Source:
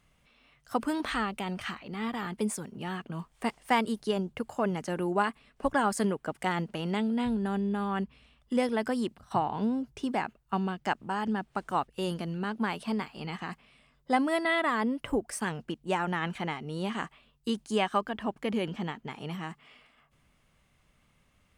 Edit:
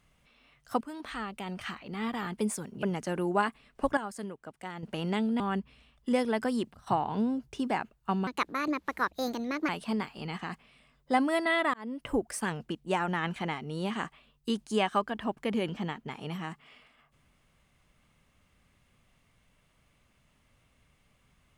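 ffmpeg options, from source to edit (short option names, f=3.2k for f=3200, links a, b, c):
-filter_complex "[0:a]asplit=9[a][b][c][d][e][f][g][h][i];[a]atrim=end=0.81,asetpts=PTS-STARTPTS,afade=t=out:st=0.806:d=0.004:c=hsin:silence=0.199526[j];[b]atrim=start=0.81:end=2.832,asetpts=PTS-STARTPTS,afade=t=in:d=1.15:silence=0.199526[k];[c]atrim=start=4.638:end=5.782[l];[d]atrim=start=5.778:end=6.642,asetpts=PTS-STARTPTS,volume=-11dB[m];[e]atrim=start=6.638:end=7.212[n];[f]atrim=start=7.838:end=10.714[o];[g]atrim=start=10.71:end=12.68,asetpts=PTS-STARTPTS,asetrate=61299,aresample=44100,atrim=end_sample=62501,asetpts=PTS-STARTPTS[p];[h]atrim=start=12.676:end=14.73,asetpts=PTS-STARTPTS,afade=t=out:st=2.05:d=0.004:c=hsin[q];[i]atrim=start=14.73,asetpts=PTS-STARTPTS,afade=t=in:d=0.39[r];[j][k]concat=n=2:v=0:a=1[s];[s][l]acrossfade=d=0.004:c1=hsin:c2=hsin[t];[t][m]acrossfade=d=0.004:c1=hsin:c2=hsin[u];[u][n]acrossfade=d=0.004:c1=hsin:c2=hsin[v];[v][o]acrossfade=d=0.004:c1=hsin:c2=hsin[w];[w][p]acrossfade=d=0.004:c1=hsin:c2=hsin[x];[q][r]concat=n=2:v=0:a=1[y];[x][y]acrossfade=d=0.004:c1=hsin:c2=hsin"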